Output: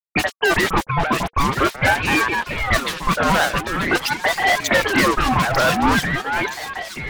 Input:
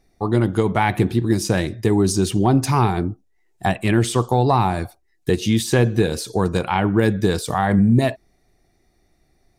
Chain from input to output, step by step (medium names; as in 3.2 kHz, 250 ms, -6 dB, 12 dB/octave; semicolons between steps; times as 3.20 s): band-stop 600 Hz, Q 12; de-hum 84.2 Hz, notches 6; low-pass that closes with the level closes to 620 Hz, closed at -15.5 dBFS; spectral noise reduction 24 dB; in parallel at +2 dB: peak limiter -17.5 dBFS, peak gain reduction 9.5 dB; on the sum: wah-wah 2.6 Hz 410–3300 Hz, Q 2.1; fuzz box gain 40 dB, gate -41 dBFS; phase dispersion highs, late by 56 ms, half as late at 1.9 kHz; speed mistake 33 rpm record played at 45 rpm; on a send: echo whose repeats swap between lows and highs 466 ms, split 2.5 kHz, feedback 68%, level -5 dB; on the sum: ring modulator with a swept carrier 880 Hz, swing 55%, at 0.45 Hz; trim +1.5 dB